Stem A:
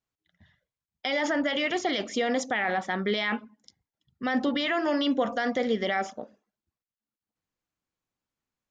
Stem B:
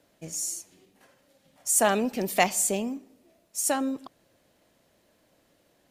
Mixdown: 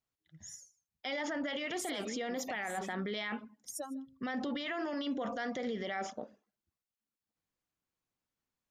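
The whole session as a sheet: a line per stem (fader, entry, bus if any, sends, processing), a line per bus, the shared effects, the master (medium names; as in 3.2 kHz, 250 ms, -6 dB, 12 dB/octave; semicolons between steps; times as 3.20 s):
-2.5 dB, 0.00 s, no send, no echo send, none
-7.5 dB, 0.10 s, no send, echo send -22 dB, expander on every frequency bin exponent 3; compression 3:1, threshold -30 dBFS, peak gain reduction 9 dB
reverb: none
echo: delay 153 ms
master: peak limiter -29 dBFS, peak gain reduction 11.5 dB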